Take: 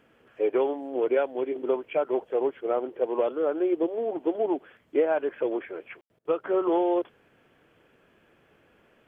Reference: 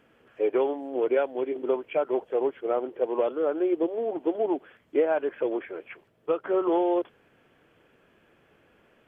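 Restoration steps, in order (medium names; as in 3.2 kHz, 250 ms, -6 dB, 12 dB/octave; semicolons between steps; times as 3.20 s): room tone fill 6.01–6.10 s; interpolate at 6.19 s, 58 ms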